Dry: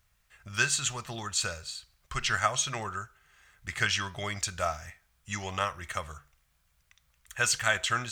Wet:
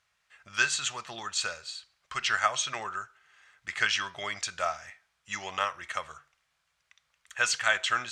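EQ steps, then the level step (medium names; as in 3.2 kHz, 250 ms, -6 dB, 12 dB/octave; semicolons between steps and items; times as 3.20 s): high-pass 750 Hz 6 dB/octave; distance through air 71 m; +3.0 dB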